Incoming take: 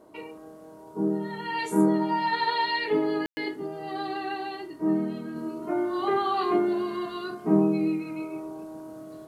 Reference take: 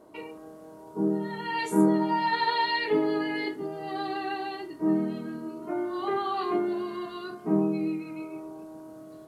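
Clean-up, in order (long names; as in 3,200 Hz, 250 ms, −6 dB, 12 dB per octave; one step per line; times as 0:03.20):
ambience match 0:03.26–0:03.37
level correction −3.5 dB, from 0:05.36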